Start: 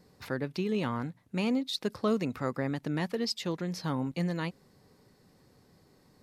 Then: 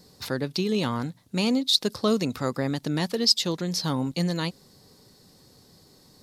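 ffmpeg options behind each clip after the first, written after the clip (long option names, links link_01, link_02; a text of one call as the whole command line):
ffmpeg -i in.wav -af "highshelf=frequency=3000:width_type=q:width=1.5:gain=7.5,volume=5dB" out.wav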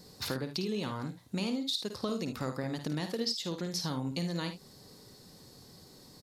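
ffmpeg -i in.wav -af "acompressor=threshold=-32dB:ratio=6,aecho=1:1:53|75:0.376|0.224" out.wav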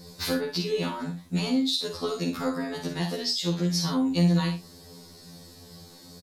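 ffmpeg -i in.wav -filter_complex "[0:a]asplit=2[link_01][link_02];[link_02]adelay=46,volume=-8dB[link_03];[link_01][link_03]amix=inputs=2:normalize=0,afftfilt=real='re*2*eq(mod(b,4),0)':imag='im*2*eq(mod(b,4),0)':win_size=2048:overlap=0.75,volume=8dB" out.wav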